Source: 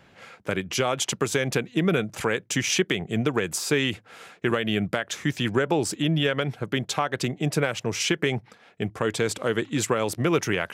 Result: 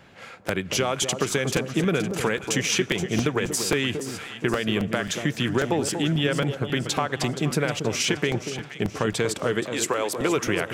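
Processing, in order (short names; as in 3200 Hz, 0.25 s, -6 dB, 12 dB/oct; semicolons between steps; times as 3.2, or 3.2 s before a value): 9.68–10.35 HPF 540 Hz -> 240 Hz 12 dB/oct; compressor 2:1, threshold -26 dBFS, peak gain reduction 5.5 dB; echo with dull and thin repeats by turns 0.237 s, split 1100 Hz, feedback 65%, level -7.5 dB; on a send at -22.5 dB: reverb RT60 3.7 s, pre-delay 43 ms; on the sum: crackling interface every 0.27 s, samples 256, repeat, from 0.48; gain +3.5 dB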